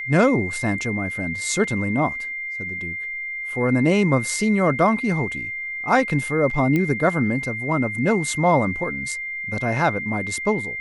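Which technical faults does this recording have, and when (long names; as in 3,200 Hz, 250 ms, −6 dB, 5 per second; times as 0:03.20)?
whistle 2,100 Hz −27 dBFS
0:06.76: click −11 dBFS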